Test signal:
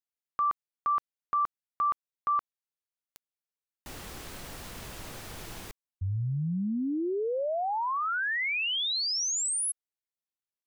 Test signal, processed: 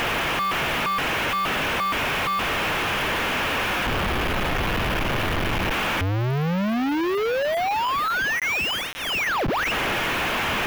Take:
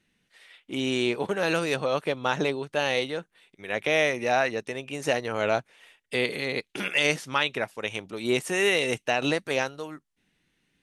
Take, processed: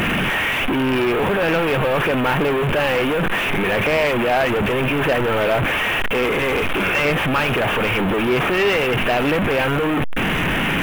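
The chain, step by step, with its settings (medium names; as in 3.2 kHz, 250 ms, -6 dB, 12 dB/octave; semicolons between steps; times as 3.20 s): one-bit delta coder 16 kbps, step -20 dBFS; band-stop 2 kHz, Q 24; waveshaping leveller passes 2; small samples zeroed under -29 dBFS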